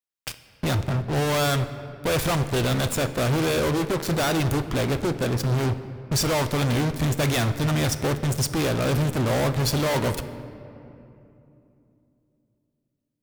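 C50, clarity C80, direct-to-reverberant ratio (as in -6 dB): 12.0 dB, 13.0 dB, 10.0 dB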